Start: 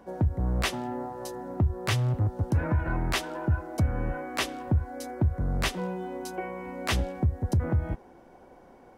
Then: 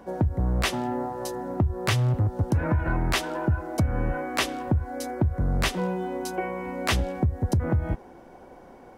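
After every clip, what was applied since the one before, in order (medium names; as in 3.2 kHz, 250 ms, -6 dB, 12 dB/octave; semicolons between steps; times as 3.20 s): compression, threshold -24 dBFS, peak gain reduction 5.5 dB; trim +5 dB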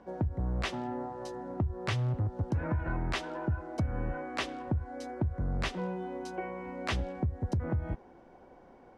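distance through air 83 m; trim -7.5 dB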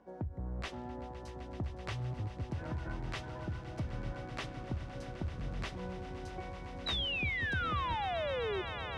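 painted sound fall, 6.86–8.62 s, 360–4000 Hz -28 dBFS; echo with a slow build-up 128 ms, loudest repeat 8, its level -16 dB; trim -8 dB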